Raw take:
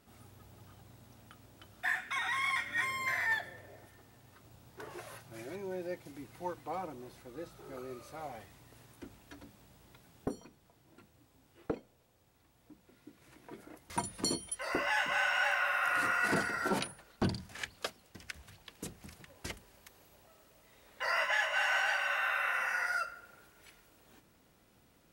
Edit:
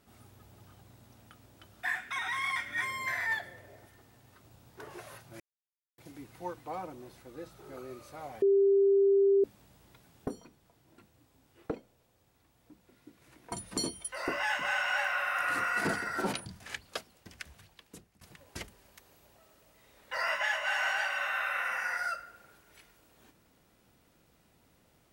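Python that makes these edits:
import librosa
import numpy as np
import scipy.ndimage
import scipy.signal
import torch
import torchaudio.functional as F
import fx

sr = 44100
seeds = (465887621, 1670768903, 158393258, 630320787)

y = fx.edit(x, sr, fx.silence(start_s=5.4, length_s=0.58),
    fx.bleep(start_s=8.42, length_s=1.02, hz=395.0, db=-20.5),
    fx.cut(start_s=13.52, length_s=0.47),
    fx.cut(start_s=16.93, length_s=0.42),
    fx.fade_out_to(start_s=18.37, length_s=0.73, floor_db=-21.0), tone=tone)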